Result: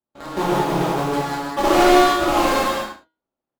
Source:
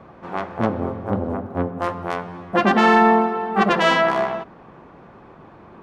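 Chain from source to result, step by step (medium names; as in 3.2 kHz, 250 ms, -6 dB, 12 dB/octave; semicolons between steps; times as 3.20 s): median filter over 41 samples; gate -38 dBFS, range -42 dB; in parallel at -5.5 dB: bit crusher 4-bit; on the sum: de-hum 98.4 Hz, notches 30; wide varispeed 1.62×; on a send: delay 71 ms -11 dB; on the sum: gated-style reverb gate 250 ms flat, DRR -8 dB; trim -6 dB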